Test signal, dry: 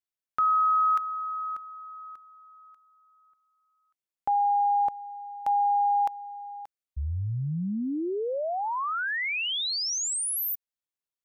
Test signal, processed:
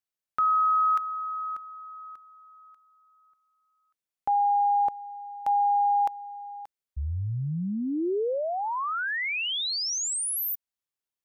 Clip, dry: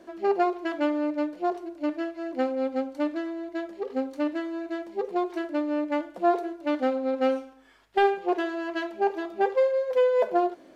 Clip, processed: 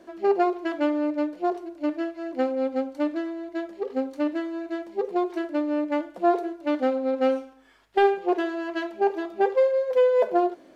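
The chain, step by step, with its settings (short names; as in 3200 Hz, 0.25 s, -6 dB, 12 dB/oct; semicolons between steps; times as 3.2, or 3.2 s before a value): dynamic EQ 400 Hz, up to +3 dB, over -32 dBFS, Q 1.2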